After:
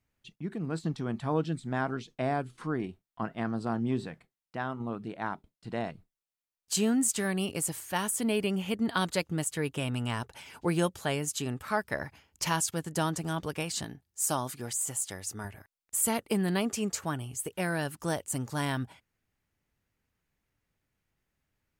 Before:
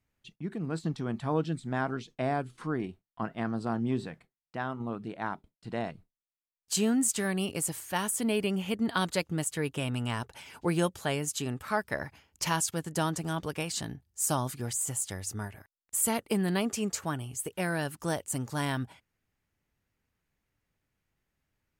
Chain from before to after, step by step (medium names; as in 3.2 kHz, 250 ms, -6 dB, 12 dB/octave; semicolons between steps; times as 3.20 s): 13.84–15.45 s: bass shelf 130 Hz -11.5 dB